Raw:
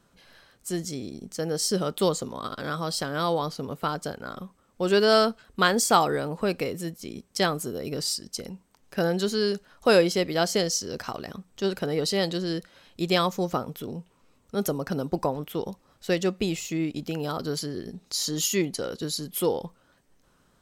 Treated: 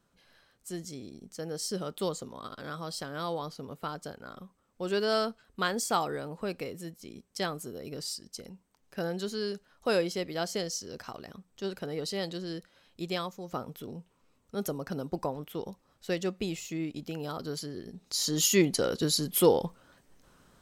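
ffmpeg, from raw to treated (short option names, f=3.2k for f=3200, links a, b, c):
-af "volume=10dB,afade=t=out:st=13.02:d=0.41:silence=0.446684,afade=t=in:st=13.43:d=0.17:silence=0.354813,afade=t=in:st=17.9:d=0.86:silence=0.334965"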